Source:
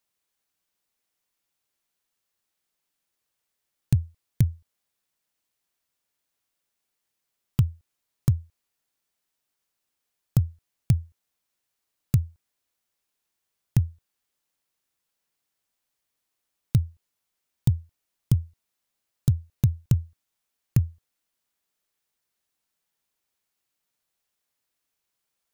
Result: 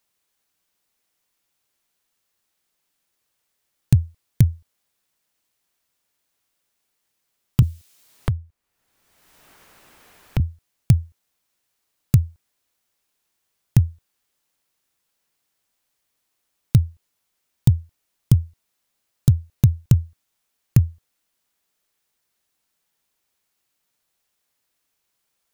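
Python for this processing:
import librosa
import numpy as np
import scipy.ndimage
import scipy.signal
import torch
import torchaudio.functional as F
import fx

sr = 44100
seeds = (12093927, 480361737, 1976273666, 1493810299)

y = fx.band_squash(x, sr, depth_pct=100, at=(7.62, 10.4))
y = y * 10.0 ** (6.0 / 20.0)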